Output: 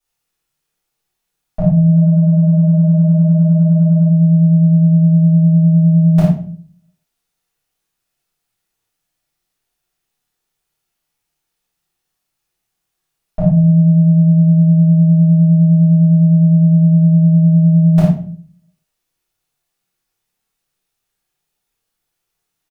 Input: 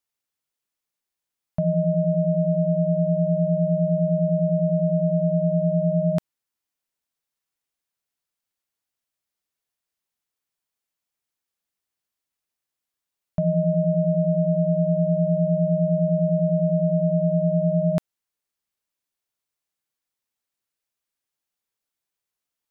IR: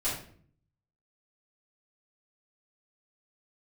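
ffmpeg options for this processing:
-filter_complex "[0:a]asplit=3[a][b][c];[a]afade=t=out:st=1.91:d=0.02[d];[b]agate=range=-33dB:threshold=-19dB:ratio=3:detection=peak,afade=t=in:st=1.91:d=0.02,afade=t=out:st=4.07:d=0.02[e];[c]afade=t=in:st=4.07:d=0.02[f];[d][e][f]amix=inputs=3:normalize=0,aecho=1:1:28|54:0.447|0.562[g];[1:a]atrim=start_sample=2205,asetrate=52920,aresample=44100[h];[g][h]afir=irnorm=-1:irlink=0,volume=4.5dB"

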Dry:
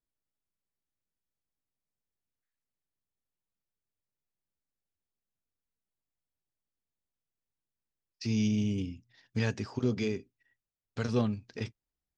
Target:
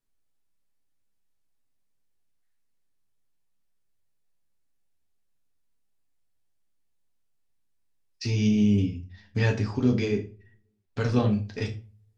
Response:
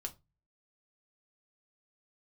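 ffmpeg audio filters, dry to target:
-filter_complex "[0:a]asettb=1/sr,asplit=3[a][b][c];[a]atrim=end=8.304[d];[b]atrim=start=8.3:end=11.3,asetpts=PTS-STARTPTS,afade=t=in:d=0.004:c=qsin,afade=t=out:st=2.996:d=0.004:c=qsin,highshelf=f=5.3k:g=-7.5[e];[c]atrim=start=11.296[f];[d][e]acrossfade=d=0.004:c1=hsin:c2=qsin[g];[g][f]acrossfade=d=0.004:c1=qsin:c2=hsin[h];[1:a]atrim=start_sample=2205,asetrate=26460,aresample=44100[i];[h][i]afir=irnorm=-1:irlink=0,volume=5.5dB"

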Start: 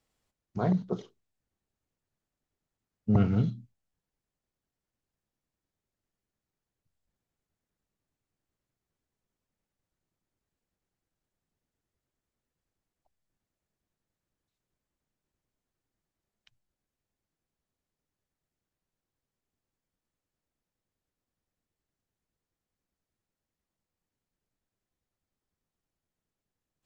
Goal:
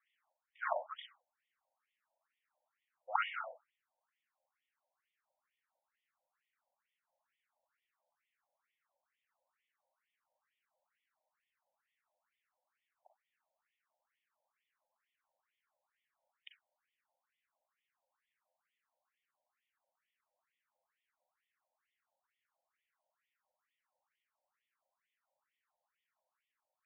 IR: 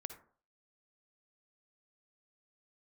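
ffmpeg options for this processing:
-filter_complex "[0:a]dynaudnorm=f=260:g=5:m=4.5dB[a];[1:a]atrim=start_sample=2205,afade=t=out:st=0.26:d=0.01,atrim=end_sample=11907,asetrate=61740,aresample=44100[b];[a][b]afir=irnorm=-1:irlink=0,afftfilt=real='re*between(b*sr/1024,680*pow(2600/680,0.5+0.5*sin(2*PI*2.2*pts/sr))/1.41,680*pow(2600/680,0.5+0.5*sin(2*PI*2.2*pts/sr))*1.41)':imag='im*between(b*sr/1024,680*pow(2600/680,0.5+0.5*sin(2*PI*2.2*pts/sr))/1.41,680*pow(2600/680,0.5+0.5*sin(2*PI*2.2*pts/sr))*1.41)':win_size=1024:overlap=0.75,volume=12.5dB"

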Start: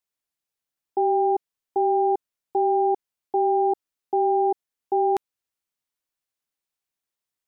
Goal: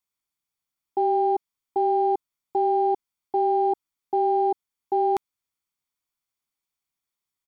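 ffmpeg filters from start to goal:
-af "aecho=1:1:0.9:0.41,aeval=exprs='0.178*(cos(1*acos(clip(val(0)/0.178,-1,1)))-cos(1*PI/2))+0.00141*(cos(7*acos(clip(val(0)/0.178,-1,1)))-cos(7*PI/2))':c=same"

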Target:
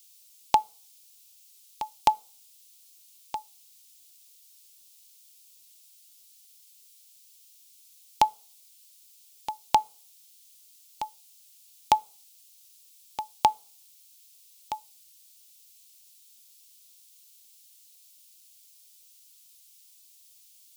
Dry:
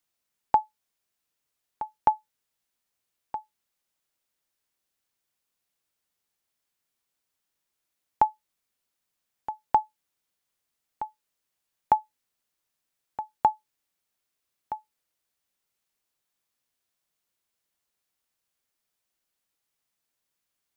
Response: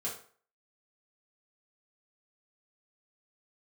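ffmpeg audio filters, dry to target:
-filter_complex "[0:a]aexciter=amount=14:drive=4.7:freq=2.5k,asplit=2[a][b];[b]asuperstop=centerf=1800:order=4:qfactor=7.1[c];[1:a]atrim=start_sample=2205,asetrate=43659,aresample=44100[d];[c][d]afir=irnorm=-1:irlink=0,volume=-24.5dB[e];[a][e]amix=inputs=2:normalize=0"

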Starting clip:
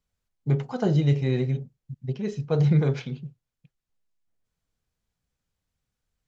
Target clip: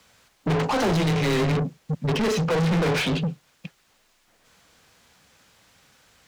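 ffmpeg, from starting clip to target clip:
-filter_complex "[0:a]afreqshift=18,alimiter=limit=-16dB:level=0:latency=1:release=398,asplit=2[a][b];[b]highpass=f=720:p=1,volume=38dB,asoftclip=type=tanh:threshold=-16dB[c];[a][c]amix=inputs=2:normalize=0,lowpass=f=4.6k:p=1,volume=-6dB"

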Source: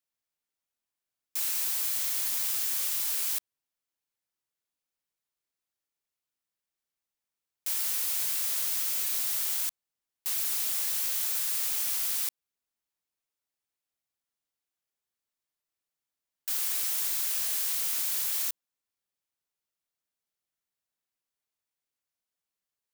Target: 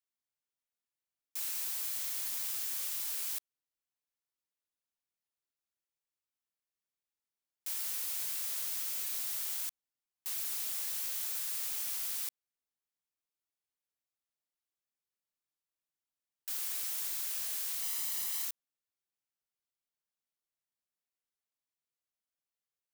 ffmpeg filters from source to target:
-filter_complex "[0:a]asettb=1/sr,asplit=3[a][b][c];[a]atrim=end=17.824[d];[b]atrim=start=17.82:end=18.45,asetpts=PTS-STARTPTS,afade=t=in:d=0.004:c=qsin,afade=t=out:st=0.626:d=0.004:c=qsin,aecho=1:1:1:0.56,atrim=end_sample=27783[e];[c]atrim=start=18.446[f];[d][e]acrossfade=d=0.004:c1=hsin:c2=qsin[g];[g][f]acrossfade=d=0.004:c1=qsin:c2=hsin,volume=-7dB"

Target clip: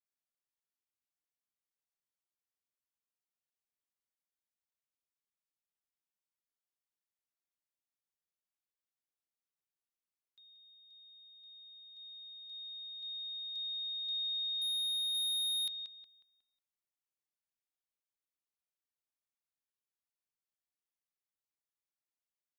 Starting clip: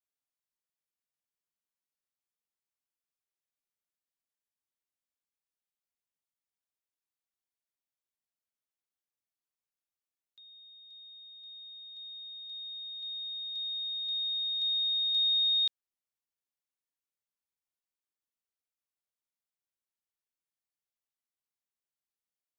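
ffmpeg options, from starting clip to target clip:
-filter_complex "[0:a]asplit=2[a][b];[b]adelay=182,lowpass=f=3.4k:p=1,volume=-8.5dB,asplit=2[c][d];[d]adelay=182,lowpass=f=3.4k:p=1,volume=0.42,asplit=2[e][f];[f]adelay=182,lowpass=f=3.4k:p=1,volume=0.42,asplit=2[g][h];[h]adelay=182,lowpass=f=3.4k:p=1,volume=0.42,asplit=2[i][j];[j]adelay=182,lowpass=f=3.4k:p=1,volume=0.42[k];[c][e][g][i][k]amix=inputs=5:normalize=0[l];[a][l]amix=inputs=2:normalize=0,asoftclip=type=hard:threshold=-30.5dB,adynamicequalizer=threshold=0.00447:dfrequency=3300:dqfactor=0.7:tfrequency=3300:tqfactor=0.7:attack=5:release=100:ratio=0.375:range=3:mode=boostabove:tftype=highshelf,volume=-6.5dB"

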